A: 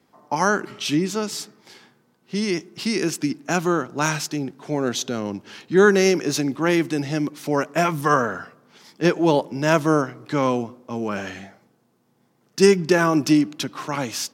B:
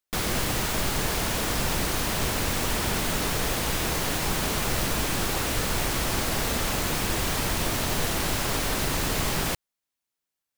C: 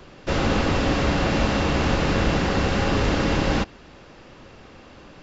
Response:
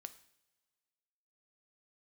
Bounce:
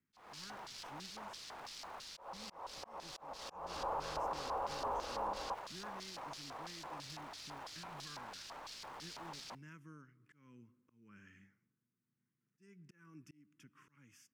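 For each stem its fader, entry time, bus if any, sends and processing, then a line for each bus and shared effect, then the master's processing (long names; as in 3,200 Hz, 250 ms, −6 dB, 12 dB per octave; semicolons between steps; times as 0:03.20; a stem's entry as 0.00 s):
−17.5 dB, 0.00 s, no bus, no send, parametric band 630 Hz −14.5 dB 2 octaves; downward compressor 2 to 1, threshold −40 dBFS, peak gain reduction 13 dB; phaser with its sweep stopped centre 1,700 Hz, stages 4
−11.0 dB, 0.00 s, bus A, send −19.5 dB, wrap-around overflow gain 20.5 dB
0:03.26 −15 dB → 0:03.63 −4 dB, 1.90 s, bus A, send −19 dB, octave-band graphic EQ 125/250/500/1,000/2,000/4,000/8,000 Hz −12/−7/+7/+11/−8/−9/−8 dB
bus A: 0.0 dB, auto-filter band-pass square 3 Hz 910–4,800 Hz; brickwall limiter −32.5 dBFS, peak gain reduction 14 dB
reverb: on, pre-delay 3 ms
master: high-shelf EQ 6,700 Hz −11.5 dB; volume swells 281 ms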